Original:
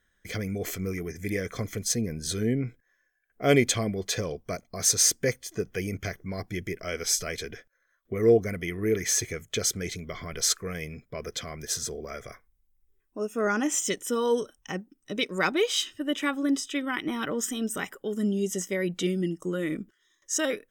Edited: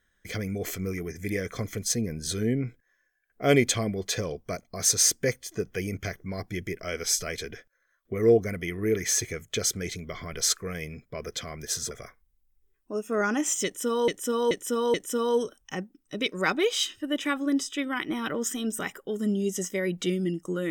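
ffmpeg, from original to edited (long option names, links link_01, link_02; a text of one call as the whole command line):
ffmpeg -i in.wav -filter_complex "[0:a]asplit=5[link_01][link_02][link_03][link_04][link_05];[link_01]atrim=end=11.912[link_06];[link_02]atrim=start=12.168:end=14.342[link_07];[link_03]atrim=start=13.908:end=14.342[link_08];[link_04]atrim=start=13.908:end=14.342[link_09];[link_05]atrim=start=13.908[link_10];[link_06][link_07]acrossfade=duration=0.004:curve1=hsin:curve2=hsin[link_11];[link_11][link_08]acrossfade=duration=0.004:curve1=hsin:curve2=hsin[link_12];[link_12][link_09]acrossfade=duration=0.004:curve1=hsin:curve2=hsin[link_13];[link_13][link_10]acrossfade=duration=0.004:curve1=hsin:curve2=hsin" out.wav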